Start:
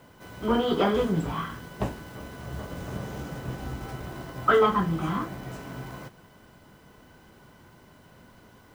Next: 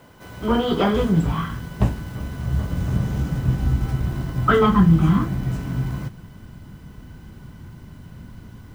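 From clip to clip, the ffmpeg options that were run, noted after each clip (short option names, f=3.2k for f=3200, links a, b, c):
-af "asubboost=boost=6:cutoff=210,volume=4dB"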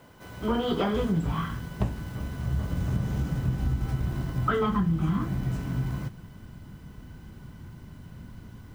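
-af "acompressor=threshold=-18dB:ratio=6,volume=-4dB"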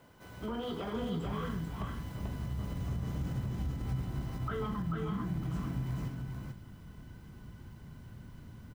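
-af "alimiter=limit=-23dB:level=0:latency=1:release=54,aecho=1:1:439:0.668,volume=-6.5dB"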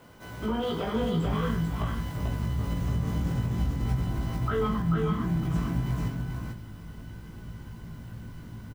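-filter_complex "[0:a]asplit=2[a][b];[b]adelay=18,volume=-3.5dB[c];[a][c]amix=inputs=2:normalize=0,volume=6dB"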